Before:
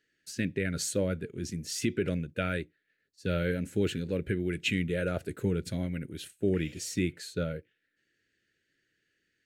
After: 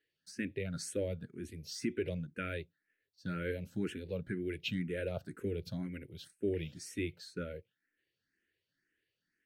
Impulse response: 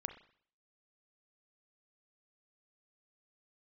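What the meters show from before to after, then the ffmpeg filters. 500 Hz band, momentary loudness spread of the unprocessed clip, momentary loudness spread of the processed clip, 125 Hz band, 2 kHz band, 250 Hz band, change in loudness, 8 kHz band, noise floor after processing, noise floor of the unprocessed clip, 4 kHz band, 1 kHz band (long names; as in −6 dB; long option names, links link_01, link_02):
−6.0 dB, 7 LU, 9 LU, −8.0 dB, −7.5 dB, −7.5 dB, −7.0 dB, −10.5 dB, below −85 dBFS, −78 dBFS, −7.5 dB, −7.5 dB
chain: -filter_complex "[0:a]equalizer=frequency=7100:width=3.9:gain=-10.5,asplit=2[link_01][link_02];[link_02]afreqshift=2[link_03];[link_01][link_03]amix=inputs=2:normalize=1,volume=-4.5dB"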